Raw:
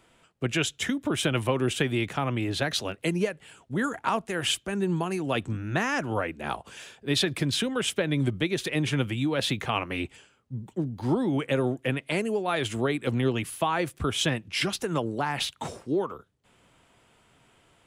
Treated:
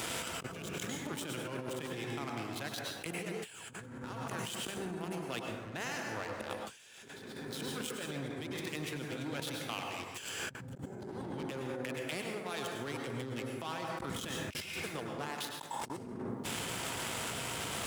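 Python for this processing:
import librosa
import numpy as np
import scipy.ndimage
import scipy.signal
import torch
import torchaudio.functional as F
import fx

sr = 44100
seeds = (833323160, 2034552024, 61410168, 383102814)

y = fx.gate_flip(x, sr, shuts_db=-29.0, range_db=-35)
y = fx.leveller(y, sr, passes=3)
y = scipy.signal.sosfilt(scipy.signal.butter(2, 73.0, 'highpass', fs=sr, output='sos'), y)
y = fx.high_shelf(y, sr, hz=3400.0, db=8.0)
y = fx.rev_plate(y, sr, seeds[0], rt60_s=1.7, hf_ratio=0.35, predelay_ms=90, drr_db=1.0)
y = fx.over_compress(y, sr, threshold_db=-50.0, ratio=-1.0)
y = F.gain(torch.from_numpy(y), 8.0).numpy()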